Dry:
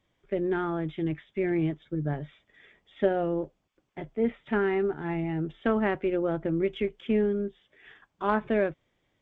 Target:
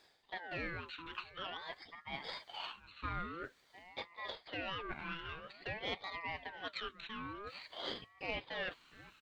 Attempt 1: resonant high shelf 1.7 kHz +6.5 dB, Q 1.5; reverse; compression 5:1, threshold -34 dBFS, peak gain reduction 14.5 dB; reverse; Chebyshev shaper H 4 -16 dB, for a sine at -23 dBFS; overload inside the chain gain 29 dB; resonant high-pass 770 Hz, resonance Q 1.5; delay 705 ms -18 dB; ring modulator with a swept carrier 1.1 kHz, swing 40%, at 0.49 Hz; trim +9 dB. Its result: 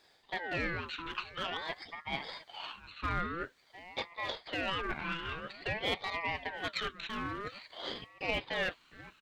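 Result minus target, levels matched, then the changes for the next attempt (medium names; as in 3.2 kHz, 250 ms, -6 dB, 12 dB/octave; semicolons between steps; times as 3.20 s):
compression: peak gain reduction -7 dB
change: compression 5:1, threshold -42.5 dBFS, peak gain reduction 21 dB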